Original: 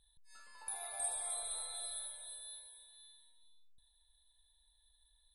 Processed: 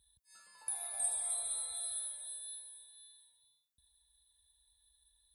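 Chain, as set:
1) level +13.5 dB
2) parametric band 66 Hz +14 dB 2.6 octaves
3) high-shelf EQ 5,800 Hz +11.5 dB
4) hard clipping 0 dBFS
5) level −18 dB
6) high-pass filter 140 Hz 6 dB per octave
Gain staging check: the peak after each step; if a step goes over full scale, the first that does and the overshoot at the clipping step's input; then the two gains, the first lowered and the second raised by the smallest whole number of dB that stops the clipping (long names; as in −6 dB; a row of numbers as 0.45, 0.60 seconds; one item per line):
−12.0, −11.5, −3.5, −3.5, −21.5, −21.5 dBFS
no step passes full scale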